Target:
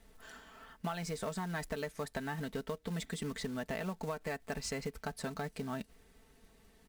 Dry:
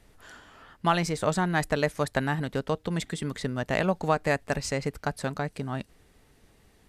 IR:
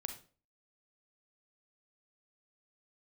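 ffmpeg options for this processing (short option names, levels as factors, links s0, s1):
-af "aecho=1:1:4.5:0.59,acompressor=threshold=0.0398:ratio=16,acrusher=bits=4:mode=log:mix=0:aa=0.000001,asoftclip=type=tanh:threshold=0.0794,volume=0.562"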